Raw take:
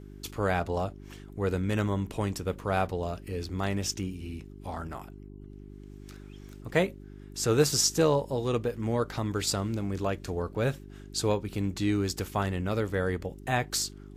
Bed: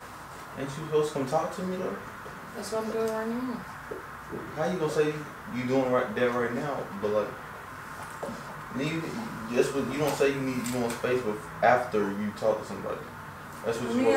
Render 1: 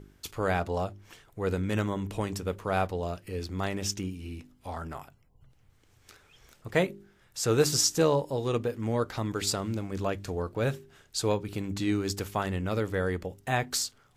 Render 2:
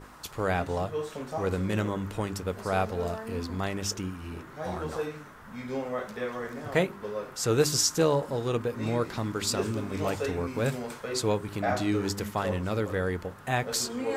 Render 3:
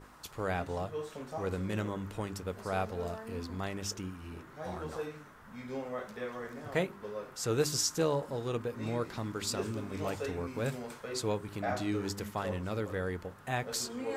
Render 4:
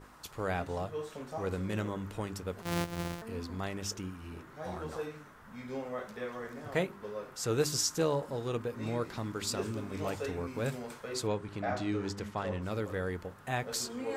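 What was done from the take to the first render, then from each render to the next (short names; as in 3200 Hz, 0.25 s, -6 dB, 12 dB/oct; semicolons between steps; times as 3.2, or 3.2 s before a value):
de-hum 50 Hz, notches 8
add bed -7.5 dB
gain -6 dB
2.62–3.22 sample sorter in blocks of 256 samples; 11.27–12.62 air absorption 57 m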